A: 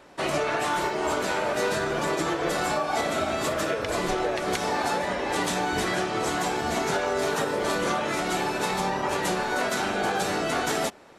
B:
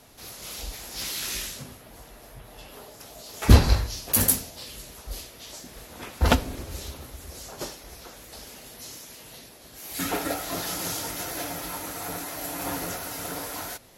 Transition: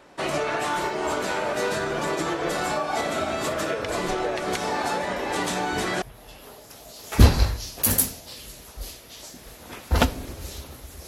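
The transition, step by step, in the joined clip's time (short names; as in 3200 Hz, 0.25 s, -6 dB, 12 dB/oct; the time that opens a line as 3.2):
A
5.16 add B from 1.46 s 0.86 s -14 dB
6.02 switch to B from 2.32 s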